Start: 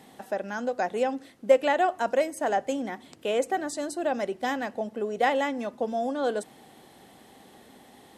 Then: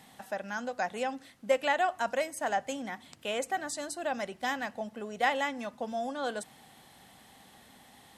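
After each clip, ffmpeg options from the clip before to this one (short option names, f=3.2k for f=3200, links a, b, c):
-af "equalizer=f=380:t=o:w=1.4:g=-12"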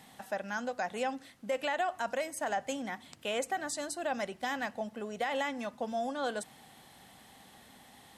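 -af "alimiter=limit=-23.5dB:level=0:latency=1:release=62"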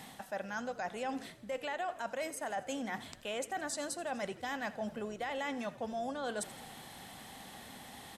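-filter_complex "[0:a]areverse,acompressor=threshold=-43dB:ratio=4,areverse,asplit=7[a][b][c][d][e][f][g];[b]adelay=83,afreqshift=-50,volume=-17.5dB[h];[c]adelay=166,afreqshift=-100,volume=-21.5dB[i];[d]adelay=249,afreqshift=-150,volume=-25.5dB[j];[e]adelay=332,afreqshift=-200,volume=-29.5dB[k];[f]adelay=415,afreqshift=-250,volume=-33.6dB[l];[g]adelay=498,afreqshift=-300,volume=-37.6dB[m];[a][h][i][j][k][l][m]amix=inputs=7:normalize=0,volume=6dB"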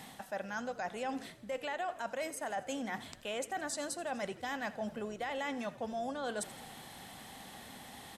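-af anull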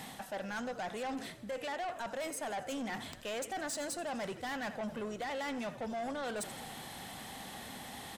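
-af "asoftclip=type=tanh:threshold=-39dB,volume=4.5dB"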